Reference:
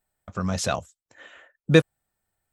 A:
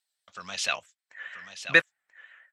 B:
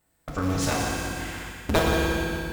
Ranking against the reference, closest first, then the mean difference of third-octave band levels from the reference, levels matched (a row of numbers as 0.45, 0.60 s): A, B; 7.5, 15.5 dB